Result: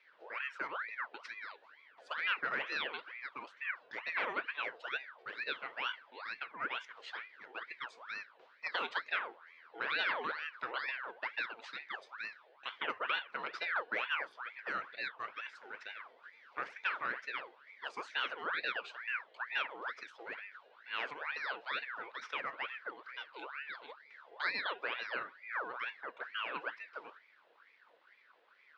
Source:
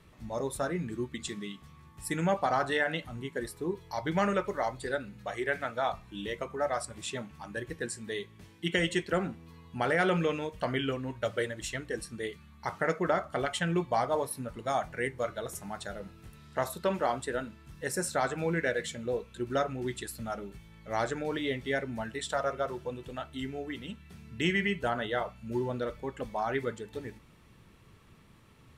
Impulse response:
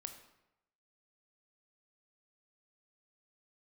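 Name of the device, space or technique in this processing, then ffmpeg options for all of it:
voice changer toy: -af "aeval=exprs='val(0)*sin(2*PI*1400*n/s+1400*0.6/2.2*sin(2*PI*2.2*n/s))':c=same,highpass=450,equalizer=f=480:t=q:w=4:g=3,equalizer=f=760:t=q:w=4:g=-6,equalizer=f=1.5k:t=q:w=4:g=5,lowpass=f=4.2k:w=0.5412,lowpass=f=4.2k:w=1.3066,volume=-5.5dB"

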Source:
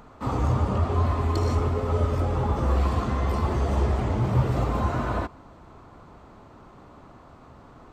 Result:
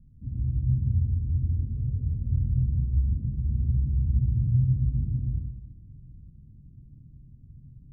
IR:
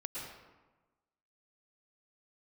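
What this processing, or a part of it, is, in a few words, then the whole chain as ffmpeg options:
club heard from the street: -filter_complex "[0:a]alimiter=limit=-20dB:level=0:latency=1:release=88,lowpass=f=160:w=0.5412,lowpass=f=160:w=1.3066[a];[1:a]atrim=start_sample=2205[b];[a][b]afir=irnorm=-1:irlink=0,volume=4.5dB"

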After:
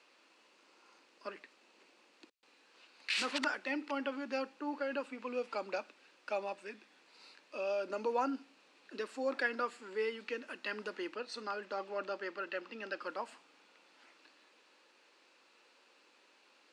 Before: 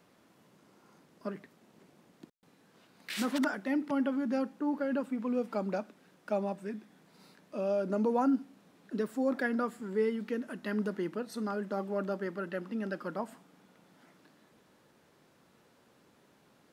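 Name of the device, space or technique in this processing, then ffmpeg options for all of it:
phone speaker on a table: -filter_complex "[0:a]asettb=1/sr,asplit=3[a][b][c];[a]atrim=end=11.144[d];[b]atrim=start=11.14:end=13.02,asetpts=PTS-STARTPTS,afade=t=in:d=0.004:c=qsin,afade=t=out:st=1.876:d=0.004:c=qsin,lowpass=7.5k[e];[c]atrim=start=13.016[f];[d][e]acrossfade=d=0.004:c1=hsin:c2=qsin[g];[g][f]acrossfade=d=0.004:c1=qsin:c2=hsin,highpass=f=360:w=0.5412,highpass=f=360:w=1.3066,equalizer=f=410:t=q:w=4:g=-6,equalizer=f=670:t=q:w=4:g=-7,equalizer=f=2.6k:t=q:w=4:g=10,equalizer=f=4.4k:t=q:w=4:g=7,lowpass=f=8.4k:w=0.5412,lowpass=f=8.4k:w=1.3066"

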